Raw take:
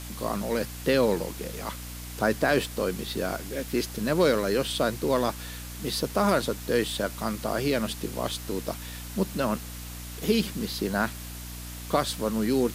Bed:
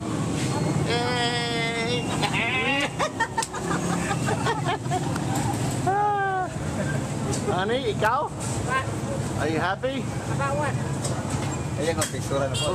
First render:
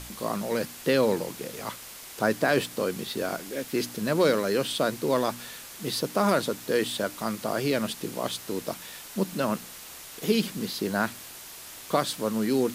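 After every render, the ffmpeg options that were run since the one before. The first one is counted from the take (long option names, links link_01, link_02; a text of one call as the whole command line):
ffmpeg -i in.wav -af "bandreject=frequency=60:width_type=h:width=4,bandreject=frequency=120:width_type=h:width=4,bandreject=frequency=180:width_type=h:width=4,bandreject=frequency=240:width_type=h:width=4,bandreject=frequency=300:width_type=h:width=4" out.wav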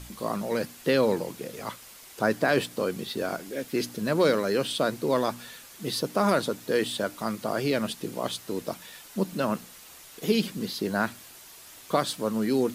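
ffmpeg -i in.wav -af "afftdn=noise_reduction=6:noise_floor=-44" out.wav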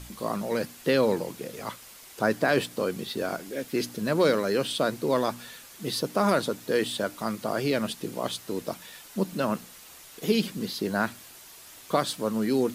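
ffmpeg -i in.wav -af anull out.wav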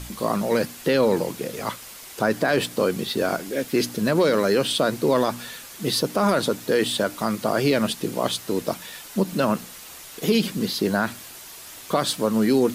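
ffmpeg -i in.wav -af "acontrast=82,alimiter=limit=-10.5dB:level=0:latency=1:release=59" out.wav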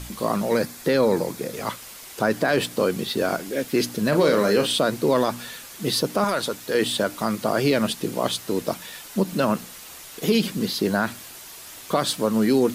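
ffmpeg -i in.wav -filter_complex "[0:a]asettb=1/sr,asplit=3[link_01][link_02][link_03];[link_01]atrim=end=0.544[link_04];[link_02]atrim=start=0.54:end=1.54,asetpts=PTS-STARTPTS,afade=type=in:duration=0.004:curve=qsin,afade=type=out:start_time=0.996:duration=0.004:curve=qsin,equalizer=frequency=2900:width=6.1:gain=-9[link_05];[link_03]atrim=start=1.536[link_06];[link_04][link_05]acrossfade=duration=0.004:curve1=hsin:curve2=qsin[link_07];[link_07][link_06]acrossfade=duration=0.004:curve1=qsin:curve2=hsin,asettb=1/sr,asplit=3[link_08][link_09][link_10];[link_08]atrim=end=4.094[link_11];[link_09]atrim=start=4.09:end=4.79,asetpts=PTS-STARTPTS,afade=type=in:duration=0.004:curve=qsin,afade=type=out:start_time=0.696:duration=0.004:curve=qsin,asplit=2[link_12][link_13];[link_13]adelay=34,volume=-6dB[link_14];[link_12][link_14]amix=inputs=2:normalize=0,atrim=end_sample=30870[link_15];[link_10]atrim=start=4.786[link_16];[link_11][link_15]acrossfade=duration=0.004:curve1=hsin:curve2=qsin[link_17];[link_17][link_16]acrossfade=duration=0.004:curve1=qsin:curve2=hsin,asettb=1/sr,asplit=3[link_18][link_19][link_20];[link_18]atrim=end=6.244[link_21];[link_19]atrim=start=6.24:end=6.75,asetpts=PTS-STARTPTS,afade=type=in:duration=0.004:curve=qsin,afade=type=out:start_time=0.506:duration=0.004:curve=qsin,equalizer=frequency=200:width_type=o:width=3:gain=-8[link_22];[link_20]atrim=start=6.746[link_23];[link_21][link_22]acrossfade=duration=0.004:curve1=hsin:curve2=qsin[link_24];[link_24][link_23]acrossfade=duration=0.004:curve1=qsin:curve2=hsin" out.wav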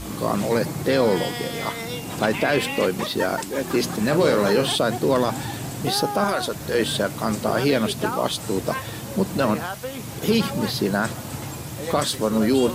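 ffmpeg -i in.wav -i bed.wav -filter_complex "[1:a]volume=-5.5dB[link_01];[0:a][link_01]amix=inputs=2:normalize=0" out.wav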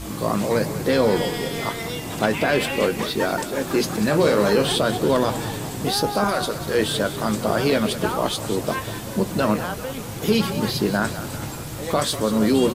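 ffmpeg -i in.wav -filter_complex "[0:a]asplit=2[link_01][link_02];[link_02]adelay=19,volume=-12dB[link_03];[link_01][link_03]amix=inputs=2:normalize=0,asplit=9[link_04][link_05][link_06][link_07][link_08][link_09][link_10][link_11][link_12];[link_05]adelay=193,afreqshift=-36,volume=-13dB[link_13];[link_06]adelay=386,afreqshift=-72,volume=-16.7dB[link_14];[link_07]adelay=579,afreqshift=-108,volume=-20.5dB[link_15];[link_08]adelay=772,afreqshift=-144,volume=-24.2dB[link_16];[link_09]adelay=965,afreqshift=-180,volume=-28dB[link_17];[link_10]adelay=1158,afreqshift=-216,volume=-31.7dB[link_18];[link_11]adelay=1351,afreqshift=-252,volume=-35.5dB[link_19];[link_12]adelay=1544,afreqshift=-288,volume=-39.2dB[link_20];[link_04][link_13][link_14][link_15][link_16][link_17][link_18][link_19][link_20]amix=inputs=9:normalize=0" out.wav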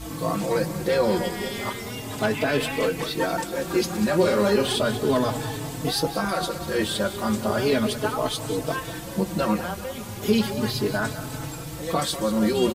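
ffmpeg -i in.wav -filter_complex "[0:a]asplit=2[link_01][link_02];[link_02]adelay=4.1,afreqshift=0.35[link_03];[link_01][link_03]amix=inputs=2:normalize=1" out.wav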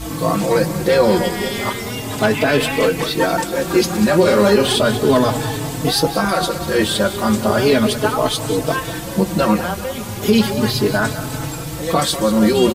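ffmpeg -i in.wav -af "volume=8dB,alimiter=limit=-3dB:level=0:latency=1" out.wav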